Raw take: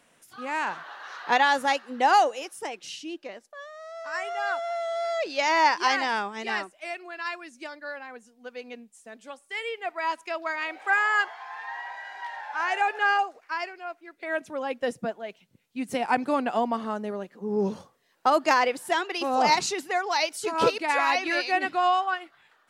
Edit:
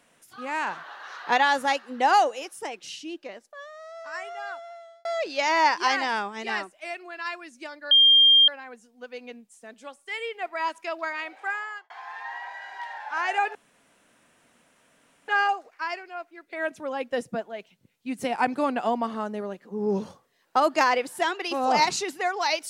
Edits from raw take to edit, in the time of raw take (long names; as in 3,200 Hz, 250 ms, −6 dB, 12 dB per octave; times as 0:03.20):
0:03.72–0:05.05: fade out
0:07.91: insert tone 3,200 Hz −12.5 dBFS 0.57 s
0:10.46–0:11.33: fade out
0:12.98: splice in room tone 1.73 s